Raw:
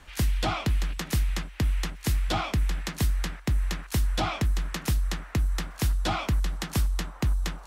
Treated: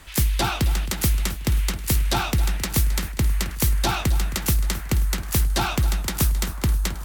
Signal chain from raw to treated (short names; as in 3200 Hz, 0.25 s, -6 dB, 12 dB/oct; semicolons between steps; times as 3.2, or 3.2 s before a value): speed mistake 44.1 kHz file played as 48 kHz; high shelf 7700 Hz +11.5 dB; lo-fi delay 0.267 s, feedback 55%, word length 8-bit, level -14 dB; gain +4 dB